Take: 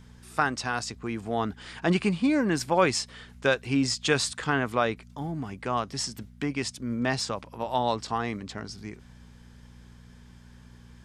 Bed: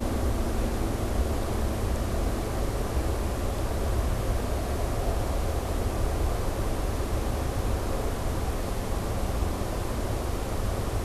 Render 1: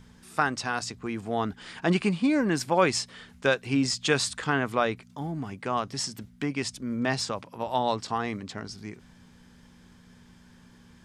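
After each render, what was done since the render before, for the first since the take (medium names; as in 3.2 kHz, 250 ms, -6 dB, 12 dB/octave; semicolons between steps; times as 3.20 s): de-hum 60 Hz, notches 2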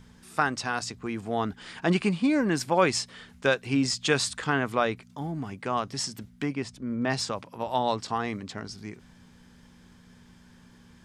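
6.54–7.09 s: treble shelf 2.2 kHz -> 4.1 kHz -12 dB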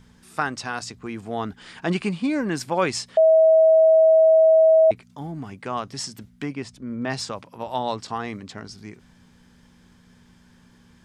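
3.17–4.91 s: bleep 642 Hz -11 dBFS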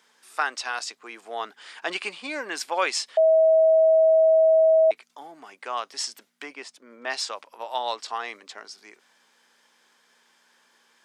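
Bessel high-pass 640 Hz, order 4; dynamic bell 3.2 kHz, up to +4 dB, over -40 dBFS, Q 0.92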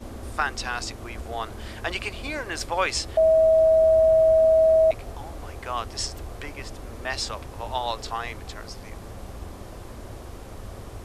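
add bed -10 dB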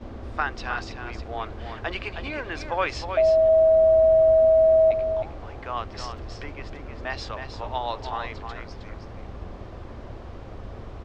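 distance through air 200 m; delay 315 ms -7.5 dB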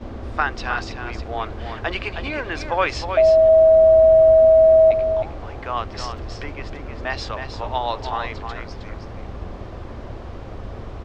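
trim +5 dB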